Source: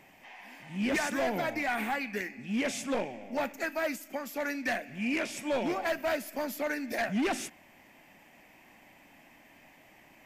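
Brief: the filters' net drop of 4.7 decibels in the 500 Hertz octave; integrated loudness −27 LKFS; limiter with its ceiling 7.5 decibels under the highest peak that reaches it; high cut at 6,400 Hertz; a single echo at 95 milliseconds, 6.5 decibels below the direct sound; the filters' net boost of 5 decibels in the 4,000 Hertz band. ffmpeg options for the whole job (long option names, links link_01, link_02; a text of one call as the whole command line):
ffmpeg -i in.wav -af "lowpass=6400,equalizer=frequency=500:width_type=o:gain=-6.5,equalizer=frequency=4000:width_type=o:gain=7.5,alimiter=level_in=3dB:limit=-24dB:level=0:latency=1,volume=-3dB,aecho=1:1:95:0.473,volume=8dB" out.wav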